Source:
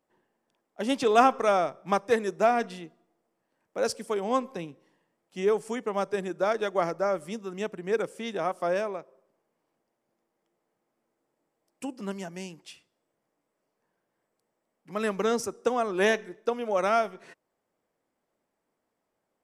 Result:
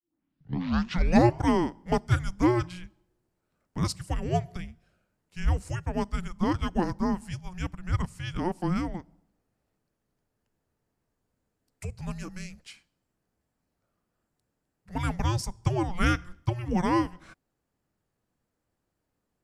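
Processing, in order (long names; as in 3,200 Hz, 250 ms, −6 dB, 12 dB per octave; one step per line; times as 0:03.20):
turntable start at the beginning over 1.41 s
frequency shifter −360 Hz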